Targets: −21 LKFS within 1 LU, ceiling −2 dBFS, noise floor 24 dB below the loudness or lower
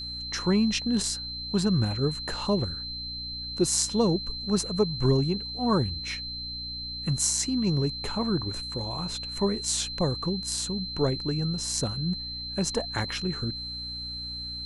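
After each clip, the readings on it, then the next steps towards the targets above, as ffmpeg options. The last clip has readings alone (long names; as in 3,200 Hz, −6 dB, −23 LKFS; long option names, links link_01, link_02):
mains hum 60 Hz; hum harmonics up to 300 Hz; level of the hum −41 dBFS; interfering tone 4,100 Hz; level of the tone −34 dBFS; integrated loudness −28.0 LKFS; sample peak −8.0 dBFS; target loudness −21.0 LKFS
→ -af "bandreject=frequency=60:width_type=h:width=6,bandreject=frequency=120:width_type=h:width=6,bandreject=frequency=180:width_type=h:width=6,bandreject=frequency=240:width_type=h:width=6,bandreject=frequency=300:width_type=h:width=6"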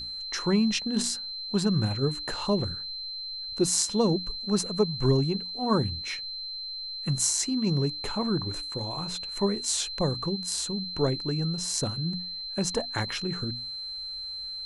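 mains hum none found; interfering tone 4,100 Hz; level of the tone −34 dBFS
→ -af "bandreject=frequency=4100:width=30"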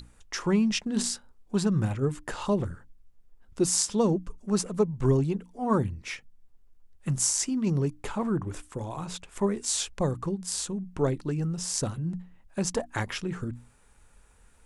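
interfering tone none found; integrated loudness −29.0 LKFS; sample peak −8.0 dBFS; target loudness −21.0 LKFS
→ -af "volume=8dB,alimiter=limit=-2dB:level=0:latency=1"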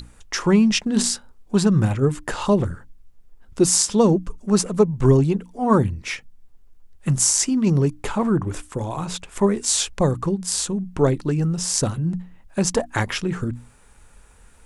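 integrated loudness −21.0 LKFS; sample peak −2.0 dBFS; background noise floor −51 dBFS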